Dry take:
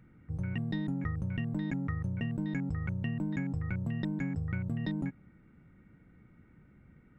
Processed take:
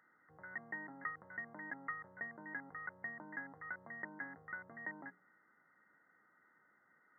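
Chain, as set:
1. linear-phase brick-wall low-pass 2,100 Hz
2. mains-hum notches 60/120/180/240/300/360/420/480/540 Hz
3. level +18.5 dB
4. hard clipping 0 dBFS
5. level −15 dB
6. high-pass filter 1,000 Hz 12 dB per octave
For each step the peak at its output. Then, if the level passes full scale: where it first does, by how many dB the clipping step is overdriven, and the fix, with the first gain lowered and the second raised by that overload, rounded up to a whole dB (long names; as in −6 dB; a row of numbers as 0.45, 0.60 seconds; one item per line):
−22.0, −23.0, −4.5, −4.5, −19.5, −28.5 dBFS
no step passes full scale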